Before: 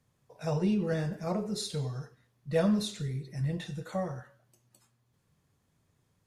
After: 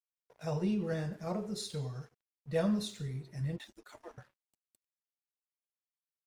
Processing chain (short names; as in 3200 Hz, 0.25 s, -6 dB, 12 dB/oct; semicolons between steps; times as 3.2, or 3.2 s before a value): 3.56–4.18 median-filter separation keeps percussive; crossover distortion -57.5 dBFS; gain -4 dB